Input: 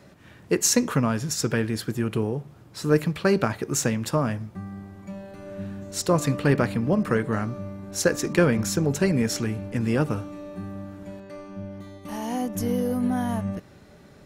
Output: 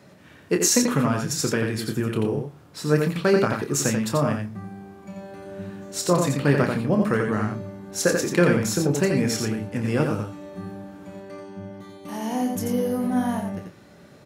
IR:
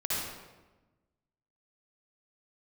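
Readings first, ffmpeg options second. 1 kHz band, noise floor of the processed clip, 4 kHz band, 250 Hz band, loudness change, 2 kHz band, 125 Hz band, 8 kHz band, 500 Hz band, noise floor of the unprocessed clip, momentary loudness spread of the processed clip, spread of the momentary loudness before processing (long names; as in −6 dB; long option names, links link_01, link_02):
+2.0 dB, −50 dBFS, +2.0 dB, +1.5 dB, +1.5 dB, +2.0 dB, +1.0 dB, +2.0 dB, +2.0 dB, −50 dBFS, 19 LU, 17 LU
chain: -filter_complex "[0:a]highpass=100,asplit=2[link_01][link_02];[link_02]adelay=28,volume=-8dB[link_03];[link_01][link_03]amix=inputs=2:normalize=0,aecho=1:1:87:0.596"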